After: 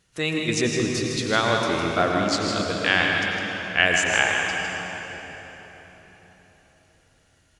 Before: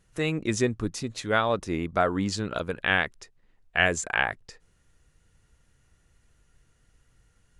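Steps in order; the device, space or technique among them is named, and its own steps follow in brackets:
PA in a hall (high-pass filter 100 Hz 6 dB per octave; parametric band 4,000 Hz +7.5 dB 1.7 octaves; single-tap delay 157 ms −7.5 dB; convolution reverb RT60 4.3 s, pre-delay 85 ms, DRR 1 dB)

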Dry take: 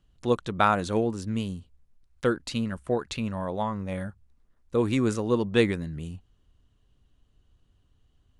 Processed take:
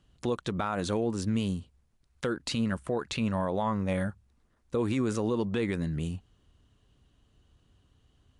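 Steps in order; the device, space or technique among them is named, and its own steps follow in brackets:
podcast mastering chain (high-pass filter 72 Hz 6 dB per octave; de-essing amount 75%; downward compressor 3 to 1, threshold −28 dBFS, peak gain reduction 9 dB; brickwall limiter −24.5 dBFS, peak gain reduction 8.5 dB; level +5 dB; MP3 96 kbit/s 24,000 Hz)

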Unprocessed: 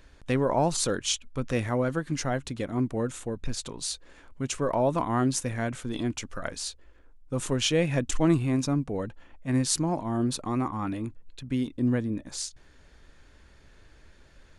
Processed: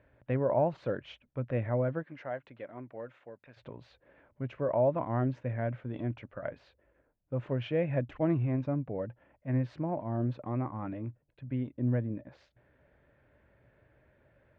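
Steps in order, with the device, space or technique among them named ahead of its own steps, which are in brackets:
bass cabinet (loudspeaker in its box 79–2,300 Hz, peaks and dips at 120 Hz +9 dB, 590 Hz +10 dB, 1,200 Hz −4 dB)
0:02.02–0:03.56: high-pass filter 690 Hz → 1,500 Hz 6 dB per octave
level −7.5 dB

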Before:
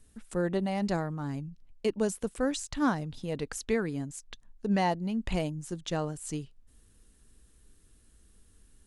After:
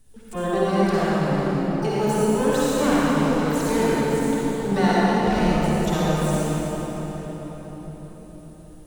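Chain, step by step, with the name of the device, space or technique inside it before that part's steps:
shimmer-style reverb (pitch-shifted copies added +12 semitones −7 dB; convolution reverb RT60 5.2 s, pre-delay 47 ms, DRR −8.5 dB)

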